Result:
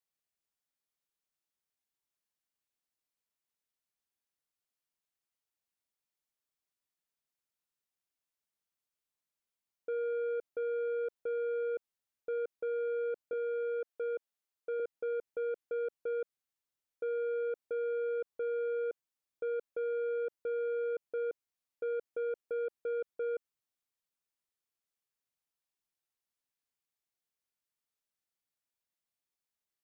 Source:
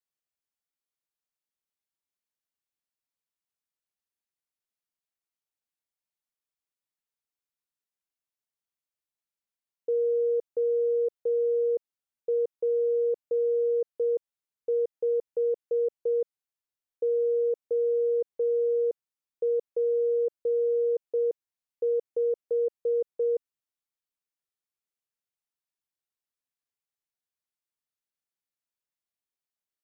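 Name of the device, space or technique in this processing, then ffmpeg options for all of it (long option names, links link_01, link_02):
soft clipper into limiter: -filter_complex "[0:a]asoftclip=type=tanh:threshold=-27.5dB,alimiter=level_in=8dB:limit=-24dB:level=0:latency=1,volume=-8dB,asettb=1/sr,asplit=3[link_01][link_02][link_03];[link_01]atrim=end=13.334[link_04];[link_02]atrim=start=13.33:end=14.8,asetpts=PTS-STARTPTS,afade=type=in:duration=0.004:curve=qsin,afade=type=out:start_time=1.466:duration=0.004:curve=qsin,highpass=300[link_05];[link_03]atrim=start=14.796[link_06];[link_04][link_05]acrossfade=duration=0.004:curve1=hsin:curve2=qsin[link_07];[link_07][link_06]acrossfade=duration=0.004:curve1=qsin:curve2=hsin"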